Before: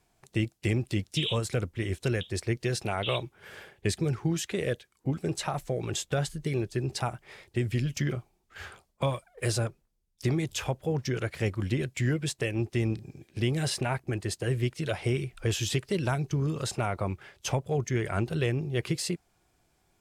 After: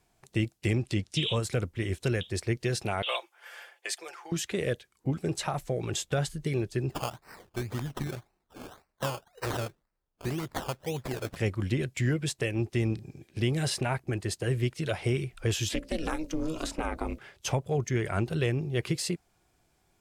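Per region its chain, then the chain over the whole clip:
0:00.74–0:01.37: low-pass filter 8,900 Hz + one half of a high-frequency compander encoder only
0:03.02–0:04.32: high-pass filter 620 Hz 24 dB per octave + notch filter 3,900 Hz + comb filter 5.8 ms, depth 48%
0:06.90–0:11.36: low-shelf EQ 470 Hz −7 dB + sample-and-hold swept by an LFO 18×, swing 60% 1.9 Hz
0:15.69–0:17.19: mains-hum notches 60/120/180/240/300/360/420/480 Hz + ring modulation 160 Hz + multiband upward and downward compressor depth 70%
whole clip: no processing

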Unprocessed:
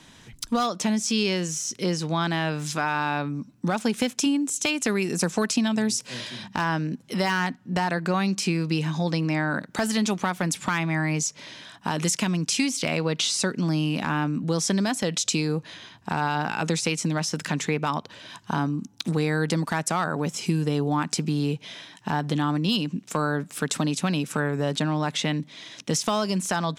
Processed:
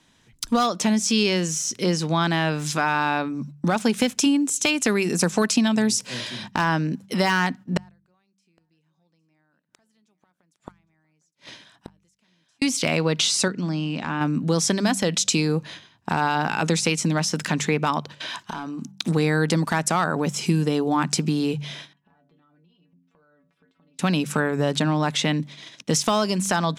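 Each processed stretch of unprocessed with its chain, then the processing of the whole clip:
0:07.77–0:12.62: gate with flip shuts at −23 dBFS, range −33 dB + single-tap delay 809 ms −16.5 dB
0:13.48–0:14.21: Chebyshev low-pass filter 8,200 Hz, order 4 + high-shelf EQ 5,700 Hz −6 dB + tuned comb filter 60 Hz, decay 1.8 s, mix 40%
0:18.20–0:18.82: mid-hump overdrive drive 15 dB, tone 6,300 Hz, clips at −11.5 dBFS + downward compressor 8 to 1, threshold −31 dBFS
0:21.93–0:23.99: stiff-string resonator 85 Hz, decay 0.3 s, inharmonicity 0.008 + downward compressor 8 to 1, threshold −47 dBFS + high-frequency loss of the air 340 metres
whole clip: noise gate −41 dBFS, range −13 dB; hum removal 48.47 Hz, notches 4; level +3.5 dB

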